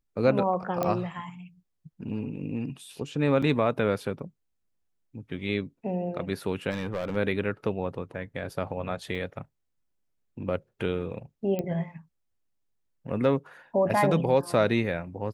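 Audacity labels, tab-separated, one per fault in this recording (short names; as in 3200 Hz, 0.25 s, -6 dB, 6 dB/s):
0.830000	0.830000	pop -14 dBFS
3.420000	3.430000	gap 5.4 ms
6.700000	7.170000	clipped -26 dBFS
9.150000	9.160000	gap 5.2 ms
11.590000	11.590000	pop -18 dBFS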